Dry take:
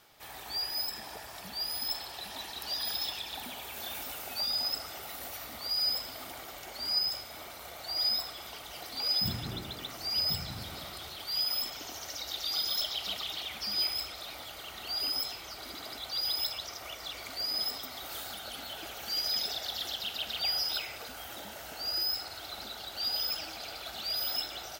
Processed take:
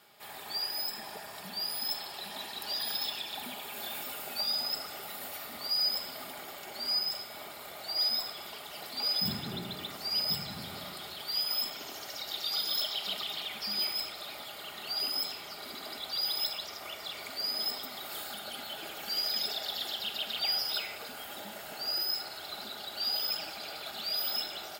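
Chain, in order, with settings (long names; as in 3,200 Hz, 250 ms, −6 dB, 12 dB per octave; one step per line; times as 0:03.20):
high-pass filter 130 Hz 12 dB per octave
notch filter 6,000 Hz, Q 6
rectangular room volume 3,100 cubic metres, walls furnished, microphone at 1.3 metres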